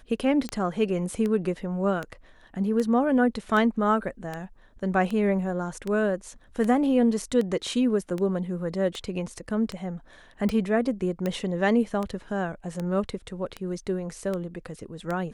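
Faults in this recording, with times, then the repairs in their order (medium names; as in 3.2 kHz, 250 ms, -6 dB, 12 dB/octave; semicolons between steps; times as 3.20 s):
tick 78 rpm -18 dBFS
11.26 s: pop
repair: de-click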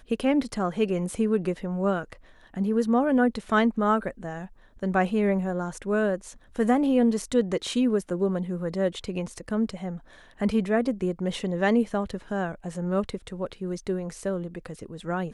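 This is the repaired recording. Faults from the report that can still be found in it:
nothing left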